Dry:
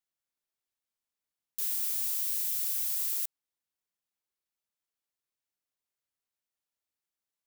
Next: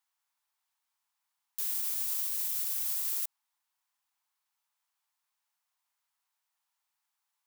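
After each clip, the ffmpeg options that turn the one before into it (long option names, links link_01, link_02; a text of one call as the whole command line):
ffmpeg -i in.wav -af "lowshelf=frequency=610:width_type=q:width=3:gain=-13.5,alimiter=level_in=5dB:limit=-24dB:level=0:latency=1,volume=-5dB,volume=6dB" out.wav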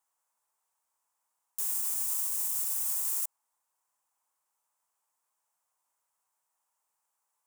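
ffmpeg -i in.wav -af "equalizer=frequency=500:width_type=o:width=1:gain=9,equalizer=frequency=1000:width_type=o:width=1:gain=5,equalizer=frequency=2000:width_type=o:width=1:gain=-3,equalizer=frequency=4000:width_type=o:width=1:gain=-9,equalizer=frequency=8000:width_type=o:width=1:gain=8" out.wav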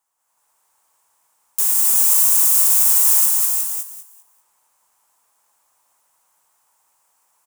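ffmpeg -i in.wav -filter_complex "[0:a]asplit=2[link_01][link_02];[link_02]aecho=0:1:198|396|594|792:0.668|0.174|0.0452|0.0117[link_03];[link_01][link_03]amix=inputs=2:normalize=0,dynaudnorm=framelen=130:gausssize=5:maxgain=9dB,asplit=2[link_04][link_05];[link_05]aecho=0:1:355|375:0.501|0.355[link_06];[link_04][link_06]amix=inputs=2:normalize=0,volume=5.5dB" out.wav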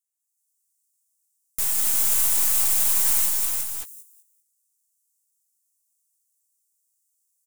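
ffmpeg -i in.wav -filter_complex "[0:a]aeval=exprs='if(lt(val(0),0),0.447*val(0),val(0))':channel_layout=same,flanger=delay=8.8:depth=3.9:regen=53:speed=0.64:shape=triangular,acrossover=split=5400[link_01][link_02];[link_01]acrusher=bits=4:dc=4:mix=0:aa=0.000001[link_03];[link_03][link_02]amix=inputs=2:normalize=0" out.wav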